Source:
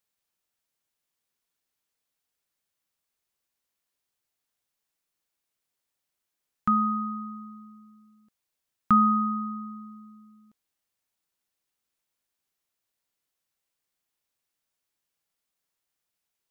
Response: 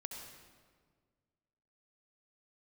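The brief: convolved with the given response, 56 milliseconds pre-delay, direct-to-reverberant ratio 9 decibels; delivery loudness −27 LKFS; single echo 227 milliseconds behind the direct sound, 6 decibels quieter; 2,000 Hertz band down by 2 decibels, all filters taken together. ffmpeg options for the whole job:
-filter_complex "[0:a]equalizer=frequency=2000:width_type=o:gain=-3,aecho=1:1:227:0.501,asplit=2[link_01][link_02];[1:a]atrim=start_sample=2205,adelay=56[link_03];[link_02][link_03]afir=irnorm=-1:irlink=0,volume=-6.5dB[link_04];[link_01][link_04]amix=inputs=2:normalize=0,volume=-3dB"

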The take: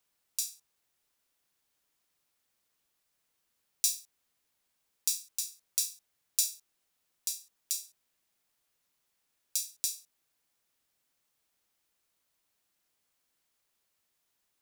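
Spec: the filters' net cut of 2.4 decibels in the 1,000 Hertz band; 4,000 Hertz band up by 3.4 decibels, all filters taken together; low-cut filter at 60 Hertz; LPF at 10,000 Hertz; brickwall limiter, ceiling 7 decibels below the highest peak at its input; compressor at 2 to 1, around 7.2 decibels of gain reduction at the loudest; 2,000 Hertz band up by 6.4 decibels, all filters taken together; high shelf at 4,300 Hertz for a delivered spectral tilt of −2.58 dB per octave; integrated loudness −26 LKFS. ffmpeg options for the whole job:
ffmpeg -i in.wav -af "highpass=60,lowpass=10000,equalizer=frequency=1000:width_type=o:gain=-6.5,equalizer=frequency=2000:width_type=o:gain=8.5,equalizer=frequency=4000:width_type=o:gain=7.5,highshelf=frequency=4300:gain=-5.5,acompressor=threshold=-38dB:ratio=2,volume=17.5dB,alimiter=limit=-2dB:level=0:latency=1" out.wav

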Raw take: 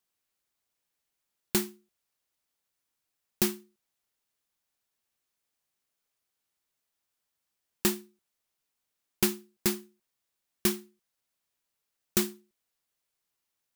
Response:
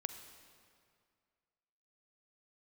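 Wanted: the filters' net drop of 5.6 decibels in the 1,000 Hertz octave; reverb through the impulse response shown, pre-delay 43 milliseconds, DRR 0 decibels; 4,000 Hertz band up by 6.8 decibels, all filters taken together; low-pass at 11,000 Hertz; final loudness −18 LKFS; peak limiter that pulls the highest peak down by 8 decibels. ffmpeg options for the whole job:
-filter_complex "[0:a]lowpass=11000,equalizer=frequency=1000:width_type=o:gain=-8,equalizer=frequency=4000:width_type=o:gain=9,alimiter=limit=-16dB:level=0:latency=1,asplit=2[link_01][link_02];[1:a]atrim=start_sample=2205,adelay=43[link_03];[link_02][link_03]afir=irnorm=-1:irlink=0,volume=1dB[link_04];[link_01][link_04]amix=inputs=2:normalize=0,volume=14dB"

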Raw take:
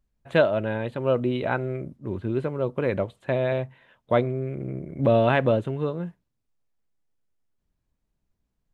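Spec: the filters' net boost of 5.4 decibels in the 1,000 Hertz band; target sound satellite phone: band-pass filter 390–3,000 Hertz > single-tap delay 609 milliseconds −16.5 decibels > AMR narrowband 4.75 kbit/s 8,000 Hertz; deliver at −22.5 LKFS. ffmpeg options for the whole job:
ffmpeg -i in.wav -af "highpass=390,lowpass=3000,equalizer=frequency=1000:width_type=o:gain=8,aecho=1:1:609:0.15,volume=3dB" -ar 8000 -c:a libopencore_amrnb -b:a 4750 out.amr

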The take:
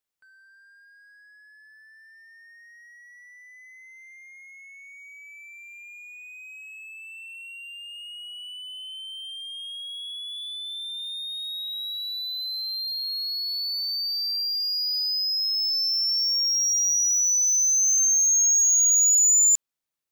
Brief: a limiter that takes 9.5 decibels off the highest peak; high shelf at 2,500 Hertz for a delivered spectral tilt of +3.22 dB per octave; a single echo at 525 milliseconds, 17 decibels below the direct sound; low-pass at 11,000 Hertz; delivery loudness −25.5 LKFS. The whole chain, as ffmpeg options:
ffmpeg -i in.wav -af "lowpass=11000,highshelf=frequency=2500:gain=-8,alimiter=level_in=7.5dB:limit=-24dB:level=0:latency=1,volume=-7.5dB,aecho=1:1:525:0.141,volume=8dB" out.wav

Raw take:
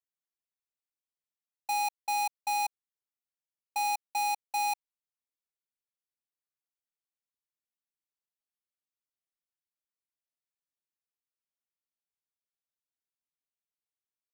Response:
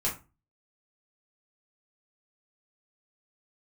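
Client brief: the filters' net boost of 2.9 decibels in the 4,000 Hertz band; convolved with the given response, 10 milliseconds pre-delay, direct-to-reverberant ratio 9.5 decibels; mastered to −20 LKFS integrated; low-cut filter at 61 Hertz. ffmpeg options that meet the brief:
-filter_complex "[0:a]highpass=61,equalizer=frequency=4000:width_type=o:gain=3,asplit=2[link_01][link_02];[1:a]atrim=start_sample=2205,adelay=10[link_03];[link_02][link_03]afir=irnorm=-1:irlink=0,volume=-16.5dB[link_04];[link_01][link_04]amix=inputs=2:normalize=0,volume=12dB"

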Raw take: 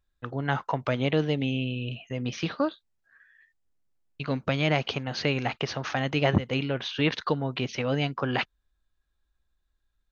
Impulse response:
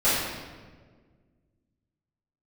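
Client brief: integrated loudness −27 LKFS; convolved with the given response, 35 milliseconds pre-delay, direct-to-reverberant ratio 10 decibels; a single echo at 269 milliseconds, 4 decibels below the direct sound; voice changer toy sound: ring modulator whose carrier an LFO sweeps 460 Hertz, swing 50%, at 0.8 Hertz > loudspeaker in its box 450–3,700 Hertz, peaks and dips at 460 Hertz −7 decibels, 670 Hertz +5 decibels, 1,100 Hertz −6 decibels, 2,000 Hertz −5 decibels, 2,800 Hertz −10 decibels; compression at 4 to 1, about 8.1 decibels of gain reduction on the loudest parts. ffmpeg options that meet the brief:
-filter_complex "[0:a]acompressor=threshold=-26dB:ratio=4,aecho=1:1:269:0.631,asplit=2[link_01][link_02];[1:a]atrim=start_sample=2205,adelay=35[link_03];[link_02][link_03]afir=irnorm=-1:irlink=0,volume=-26.5dB[link_04];[link_01][link_04]amix=inputs=2:normalize=0,aeval=exprs='val(0)*sin(2*PI*460*n/s+460*0.5/0.8*sin(2*PI*0.8*n/s))':channel_layout=same,highpass=450,equalizer=frequency=460:width_type=q:width=4:gain=-7,equalizer=frequency=670:width_type=q:width=4:gain=5,equalizer=frequency=1100:width_type=q:width=4:gain=-6,equalizer=frequency=2000:width_type=q:width=4:gain=-5,equalizer=frequency=2800:width_type=q:width=4:gain=-10,lowpass=frequency=3700:width=0.5412,lowpass=frequency=3700:width=1.3066,volume=10.5dB"

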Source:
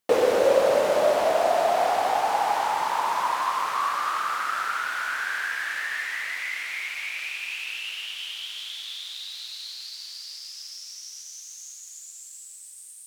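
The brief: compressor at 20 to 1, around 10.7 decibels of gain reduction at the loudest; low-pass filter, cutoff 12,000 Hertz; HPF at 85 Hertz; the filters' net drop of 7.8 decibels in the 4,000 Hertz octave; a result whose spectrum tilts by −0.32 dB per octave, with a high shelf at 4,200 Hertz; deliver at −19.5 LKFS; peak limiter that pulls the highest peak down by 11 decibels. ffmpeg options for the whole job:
ffmpeg -i in.wav -af "highpass=85,lowpass=12000,equalizer=frequency=4000:width_type=o:gain=-6.5,highshelf=frequency=4200:gain=-7.5,acompressor=threshold=-26dB:ratio=20,volume=17dB,alimiter=limit=-11dB:level=0:latency=1" out.wav

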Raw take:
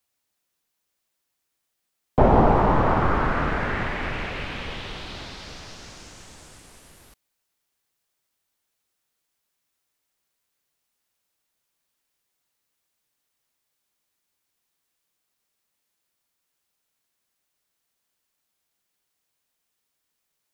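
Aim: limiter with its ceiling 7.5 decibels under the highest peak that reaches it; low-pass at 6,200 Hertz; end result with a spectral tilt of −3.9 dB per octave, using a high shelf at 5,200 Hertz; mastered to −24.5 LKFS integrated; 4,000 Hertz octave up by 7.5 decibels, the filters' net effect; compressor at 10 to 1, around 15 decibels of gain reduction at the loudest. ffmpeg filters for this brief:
ffmpeg -i in.wav -af "lowpass=6200,equalizer=frequency=4000:width_type=o:gain=9,highshelf=frequency=5200:gain=3.5,acompressor=threshold=-27dB:ratio=10,volume=9.5dB,alimiter=limit=-13.5dB:level=0:latency=1" out.wav

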